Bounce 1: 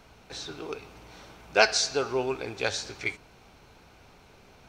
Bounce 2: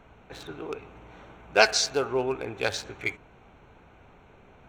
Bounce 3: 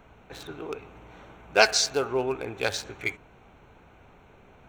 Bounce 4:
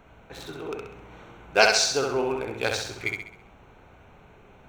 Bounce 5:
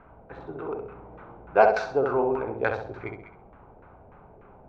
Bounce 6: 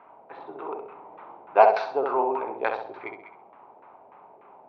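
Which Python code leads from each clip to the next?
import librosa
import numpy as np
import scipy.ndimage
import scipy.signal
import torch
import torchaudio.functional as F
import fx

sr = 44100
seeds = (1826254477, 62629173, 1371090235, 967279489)

y1 = fx.wiener(x, sr, points=9)
y1 = y1 * 10.0 ** (1.5 / 20.0)
y2 = fx.high_shelf(y1, sr, hz=10000.0, db=7.5)
y3 = fx.echo_feedback(y2, sr, ms=66, feedback_pct=45, wet_db=-4.0)
y4 = fx.filter_lfo_lowpass(y3, sr, shape='saw_down', hz=3.4, low_hz=590.0, high_hz=1500.0, q=1.6)
y5 = fx.cabinet(y4, sr, low_hz=450.0, low_slope=12, high_hz=4400.0, hz=(490.0, 940.0, 1500.0), db=(-5, 5, -8))
y5 = y5 * 10.0 ** (3.0 / 20.0)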